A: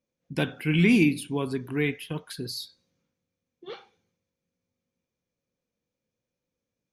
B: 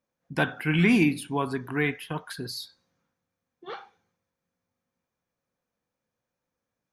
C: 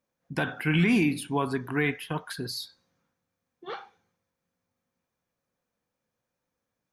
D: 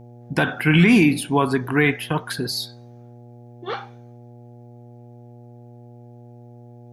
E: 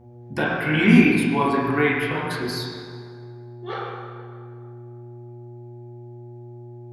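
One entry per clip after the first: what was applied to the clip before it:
band shelf 1100 Hz +9 dB; gain -1 dB
limiter -15.5 dBFS, peak gain reduction 6.5 dB; gain +1 dB
buzz 120 Hz, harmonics 7, -52 dBFS -6 dB/oct; gain +8.5 dB
reverb RT60 2.1 s, pre-delay 6 ms, DRR -6.5 dB; gain -7.5 dB

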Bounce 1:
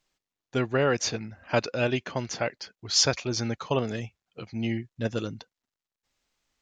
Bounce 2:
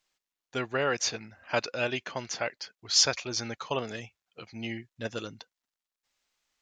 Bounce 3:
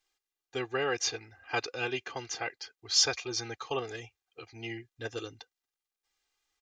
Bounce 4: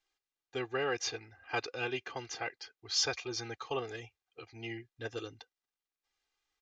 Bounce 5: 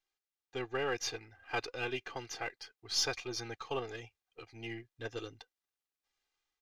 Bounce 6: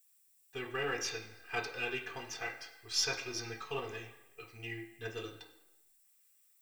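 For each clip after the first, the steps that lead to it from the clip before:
low shelf 440 Hz -11 dB
comb 2.5 ms, depth 98%; gain -5 dB
in parallel at -7 dB: soft clip -24 dBFS, distortion -12 dB; on the sum: air absorption 61 m; gain -5 dB
half-wave gain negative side -3 dB; AGC gain up to 4.5 dB; gain -4.5 dB
added noise violet -69 dBFS; reverb RT60 1.0 s, pre-delay 3 ms, DRR 0 dB

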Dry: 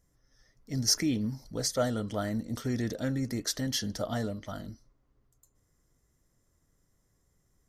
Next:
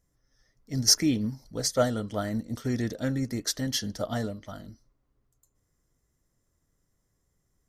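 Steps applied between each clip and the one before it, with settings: upward expander 1.5:1, over -40 dBFS; gain +6 dB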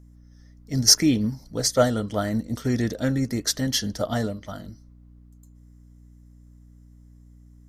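hum 60 Hz, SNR 23 dB; gain +5 dB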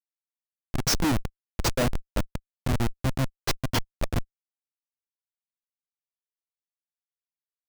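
buzz 120 Hz, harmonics 6, -44 dBFS -8 dB/oct; Schmitt trigger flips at -18.5 dBFS; sample leveller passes 3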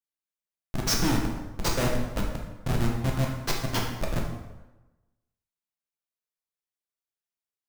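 plate-style reverb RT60 1.1 s, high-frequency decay 0.7×, DRR -1 dB; gain -3.5 dB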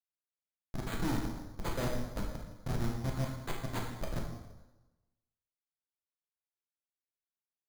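careless resampling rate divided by 8×, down filtered, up hold; gain -8 dB

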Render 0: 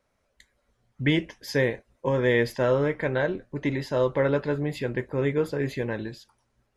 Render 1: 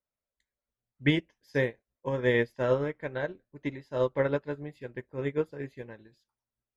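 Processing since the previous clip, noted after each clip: upward expander 2.5:1, over -34 dBFS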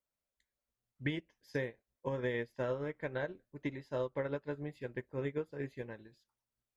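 compressor 6:1, threshold -32 dBFS, peak gain reduction 13 dB; gain -1 dB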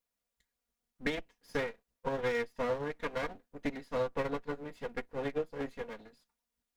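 minimum comb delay 4.2 ms; gain +4.5 dB

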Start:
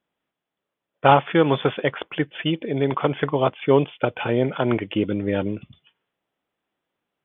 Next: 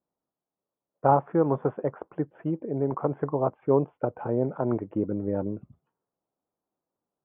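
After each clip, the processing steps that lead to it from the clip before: LPF 1100 Hz 24 dB/oct; gain -5 dB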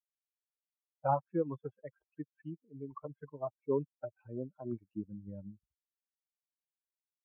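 per-bin expansion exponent 3; gain -6.5 dB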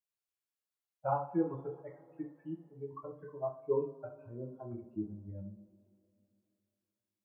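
reverb, pre-delay 3 ms, DRR -2 dB; gain -4 dB

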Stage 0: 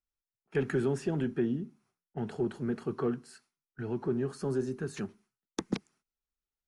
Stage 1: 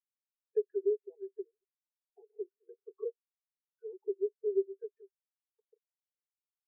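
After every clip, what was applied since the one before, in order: steep high-pass 390 Hz 96 dB/oct; compressor 4:1, threshold -38 dBFS, peak gain reduction 10.5 dB; spectral expander 4:1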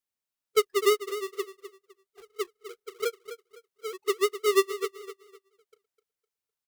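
half-waves squared off; feedback echo 0.254 s, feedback 28%, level -12 dB; gain +4.5 dB

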